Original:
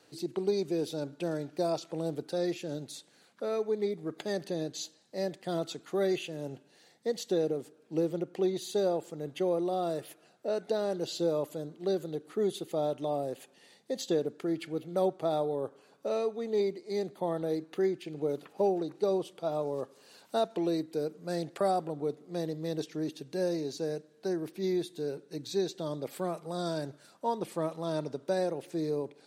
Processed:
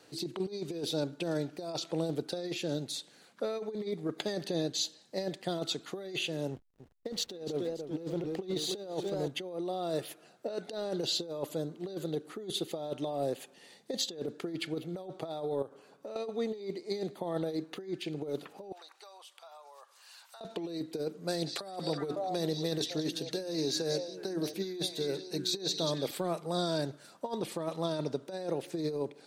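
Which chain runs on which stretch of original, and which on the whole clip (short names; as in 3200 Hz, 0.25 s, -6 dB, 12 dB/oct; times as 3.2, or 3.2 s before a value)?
6.51–9.28 backlash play -47.5 dBFS + warbling echo 0.29 s, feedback 51%, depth 98 cents, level -12 dB
15.62–16.16 compressor, threshold -43 dBFS + mismatched tape noise reduction decoder only
18.72–20.41 HPF 900 Hz 24 dB/oct + compressor 8:1, threshold -52 dBFS
21.27–26.11 high shelf 3900 Hz +6 dB + notches 60/120/180/240/300 Hz + delay with a stepping band-pass 0.185 s, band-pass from 4600 Hz, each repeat -1.4 oct, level -4 dB
whole clip: dynamic EQ 3800 Hz, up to +6 dB, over -57 dBFS, Q 1.5; negative-ratio compressor -33 dBFS, ratio -0.5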